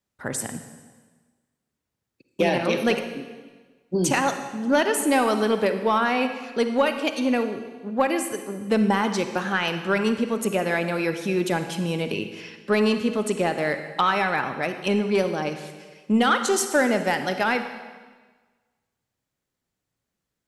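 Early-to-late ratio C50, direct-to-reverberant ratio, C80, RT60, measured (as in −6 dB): 8.5 dB, 8.0 dB, 10.0 dB, 1.4 s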